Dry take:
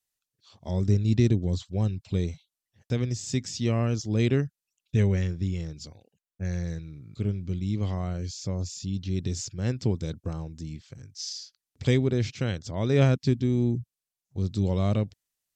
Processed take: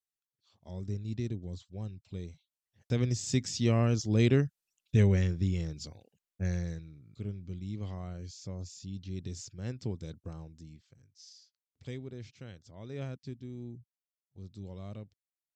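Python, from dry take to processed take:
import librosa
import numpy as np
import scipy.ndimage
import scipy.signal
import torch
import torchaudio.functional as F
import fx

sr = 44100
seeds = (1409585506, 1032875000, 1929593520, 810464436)

y = fx.gain(x, sr, db=fx.line((2.29, -13.5), (3.04, -1.0), (6.46, -1.0), (7.01, -10.0), (10.43, -10.0), (11.14, -18.5)))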